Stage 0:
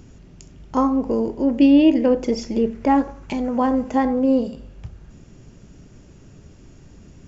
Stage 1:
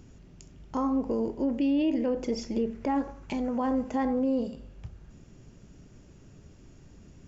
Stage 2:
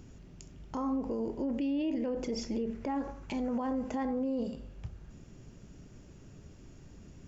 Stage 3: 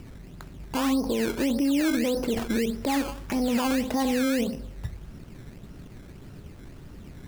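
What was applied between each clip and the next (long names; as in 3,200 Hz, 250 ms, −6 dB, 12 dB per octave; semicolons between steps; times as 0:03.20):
brickwall limiter −13 dBFS, peak gain reduction 8 dB; level −6.5 dB
brickwall limiter −26 dBFS, peak gain reduction 6.5 dB
sample-and-hold swept by an LFO 16×, swing 100% 1.7 Hz; level +8 dB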